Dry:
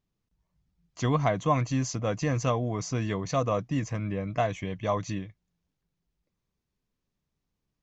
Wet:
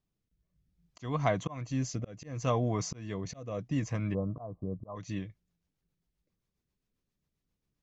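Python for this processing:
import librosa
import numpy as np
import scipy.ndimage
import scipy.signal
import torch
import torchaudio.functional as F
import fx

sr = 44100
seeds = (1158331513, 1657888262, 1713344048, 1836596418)

y = fx.steep_lowpass(x, sr, hz=1200.0, slope=72, at=(4.13, 4.95), fade=0.02)
y = fx.auto_swell(y, sr, attack_ms=342.0)
y = fx.rotary_switch(y, sr, hz=0.65, then_hz=7.5, switch_at_s=4.56)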